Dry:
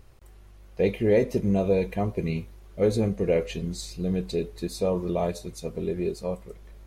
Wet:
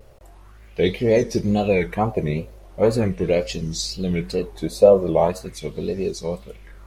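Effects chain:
tape wow and flutter 140 cents
auto-filter bell 0.41 Hz 530–5,800 Hz +13 dB
level +3.5 dB

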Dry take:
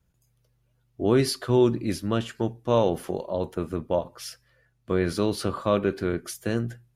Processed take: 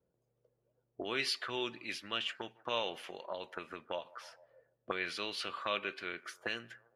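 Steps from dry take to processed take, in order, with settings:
delay with a band-pass on its return 150 ms, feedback 36%, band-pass 980 Hz, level −22.5 dB
envelope filter 470–2,700 Hz, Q 2.4, up, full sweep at −24.5 dBFS
level +5 dB

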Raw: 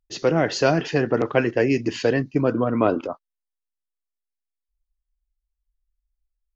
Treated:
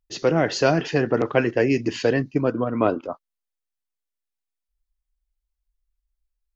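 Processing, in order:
0:02.34–0:03.08: expander for the loud parts 1.5 to 1, over −33 dBFS

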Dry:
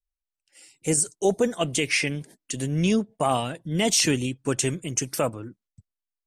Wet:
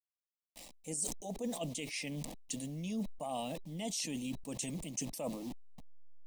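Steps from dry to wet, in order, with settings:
hold until the input has moved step −43.5 dBFS
reversed playback
downward compressor 10 to 1, threshold −36 dBFS, peak gain reduction 19.5 dB
reversed playback
phaser with its sweep stopped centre 390 Hz, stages 6
hollow resonant body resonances 390/3,900 Hz, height 8 dB
level that may fall only so fast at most 64 dB per second
level +1.5 dB

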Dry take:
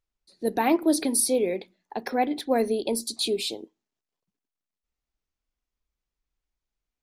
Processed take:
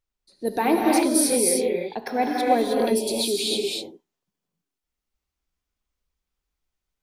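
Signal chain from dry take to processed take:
reverb whose tail is shaped and stops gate 340 ms rising, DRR −2 dB

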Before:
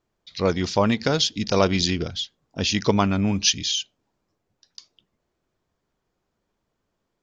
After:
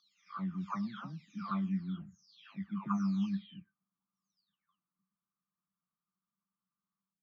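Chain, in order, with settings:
every frequency bin delayed by itself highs early, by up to 652 ms
pair of resonant band-passes 480 Hz, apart 2.6 octaves
level −6 dB

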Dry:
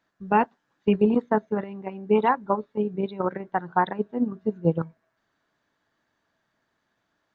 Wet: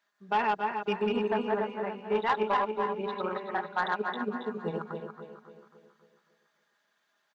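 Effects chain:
feedback delay that plays each chunk backwards 143 ms, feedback 57%, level −2 dB
high-pass filter 1,300 Hz 6 dB per octave
comb filter 4.9 ms, depth 51%
soft clipping −19 dBFS, distortion −15 dB
repeating echo 272 ms, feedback 53%, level −13 dB

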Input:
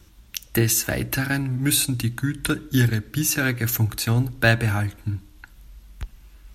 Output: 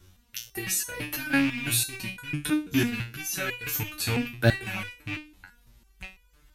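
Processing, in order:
loose part that buzzes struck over −25 dBFS, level −15 dBFS
0:01.58–0:02.25: notch filter 1,300 Hz, Q 6.9
step-sequenced resonator 6 Hz 92–490 Hz
level +6 dB

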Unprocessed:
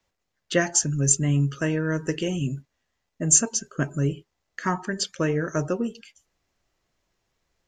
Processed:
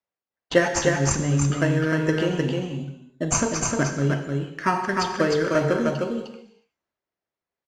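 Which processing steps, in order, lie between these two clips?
noise gate −41 dBFS, range −16 dB
high-pass filter 360 Hz 6 dB per octave
high-shelf EQ 6,400 Hz −9.5 dB
transient designer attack +4 dB, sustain +8 dB
in parallel at −7 dB: decimation without filtering 12×
on the sum: high-frequency loss of the air 71 metres
on a send: single-tap delay 306 ms −3.5 dB
on the sum: reverb whose tail is shaped and stops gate 390 ms falling, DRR 6 dB

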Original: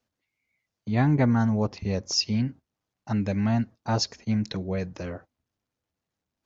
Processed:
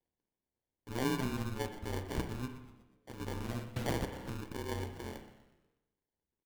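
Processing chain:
0:01.10–0:01.81: expanding power law on the bin magnitudes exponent 1.7
comb filter 2.7 ms, depth 79%
0:02.45–0:03.20: downward compressor 12 to 1, threshold −33 dBFS, peak gain reduction 10.5 dB
flanger 1.5 Hz, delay 7.8 ms, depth 4 ms, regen −66%
soft clipping −21 dBFS, distortion −18 dB
phaser with its sweep stopped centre 620 Hz, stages 6
decimation without filtering 34×
amplitude modulation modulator 130 Hz, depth 95%
echo with shifted repeats 122 ms, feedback 49%, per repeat −110 Hz, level −15 dB
spring reverb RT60 1 s, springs 32/52 ms, chirp 55 ms, DRR 8 dB
0:03.76–0:04.30: multiband upward and downward compressor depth 100%
level +1 dB

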